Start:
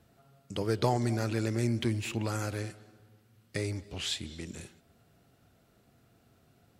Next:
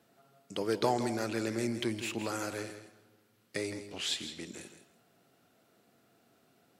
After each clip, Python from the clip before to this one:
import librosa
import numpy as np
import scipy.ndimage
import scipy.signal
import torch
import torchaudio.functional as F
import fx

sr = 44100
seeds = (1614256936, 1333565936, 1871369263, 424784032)

y = scipy.signal.sosfilt(scipy.signal.butter(2, 230.0, 'highpass', fs=sr, output='sos'), x)
y = fx.echo_feedback(y, sr, ms=163, feedback_pct=17, wet_db=-11)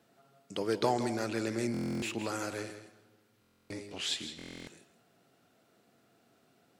y = fx.peak_eq(x, sr, hz=13000.0, db=-4.5, octaves=0.61)
y = fx.buffer_glitch(y, sr, at_s=(1.72, 3.4, 4.37), block=1024, repeats=12)